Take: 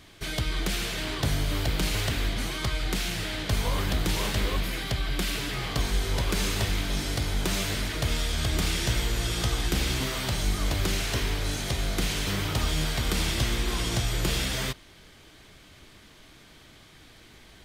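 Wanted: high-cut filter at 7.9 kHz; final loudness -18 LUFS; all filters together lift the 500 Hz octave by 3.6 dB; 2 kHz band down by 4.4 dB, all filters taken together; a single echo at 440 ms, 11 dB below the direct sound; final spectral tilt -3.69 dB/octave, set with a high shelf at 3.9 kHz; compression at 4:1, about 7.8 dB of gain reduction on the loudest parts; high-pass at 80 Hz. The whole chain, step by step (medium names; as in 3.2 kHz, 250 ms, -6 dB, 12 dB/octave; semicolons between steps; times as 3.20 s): high-pass 80 Hz; low-pass 7.9 kHz; peaking EQ 500 Hz +5 dB; peaking EQ 2 kHz -7 dB; treble shelf 3.9 kHz +4 dB; compression 4:1, threshold -33 dBFS; delay 440 ms -11 dB; trim +17 dB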